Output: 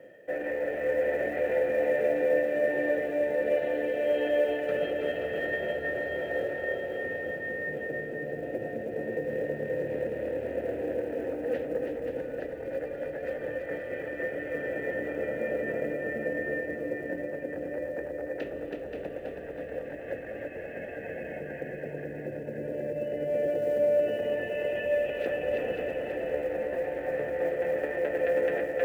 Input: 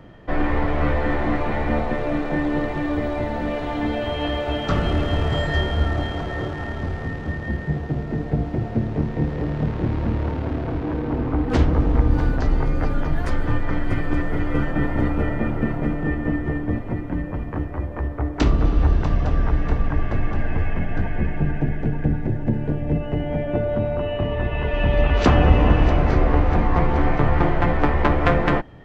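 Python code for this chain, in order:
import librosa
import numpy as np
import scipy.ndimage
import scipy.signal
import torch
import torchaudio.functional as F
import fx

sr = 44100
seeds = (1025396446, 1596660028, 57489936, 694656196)

p1 = x * (1.0 - 0.39 / 2.0 + 0.39 / 2.0 * np.cos(2.0 * np.pi * 1.4 * (np.arange(len(x)) / sr)))
p2 = p1 + 10.0 ** (-5.5 / 20.0) * np.pad(p1, (int(528 * sr / 1000.0), 0))[:len(p1)]
p3 = fx.over_compress(p2, sr, threshold_db=-23.0, ratio=-0.5)
p4 = p2 + (p3 * librosa.db_to_amplitude(1.0))
p5 = fx.vowel_filter(p4, sr, vowel='e')
p6 = fx.high_shelf(p5, sr, hz=3000.0, db=-8.5)
p7 = fx.quant_companded(p6, sr, bits=8)
p8 = fx.low_shelf(p7, sr, hz=69.0, db=-8.5)
y = p8 + 10.0 ** (-5.0 / 20.0) * np.pad(p8, (int(325 * sr / 1000.0), 0))[:len(p8)]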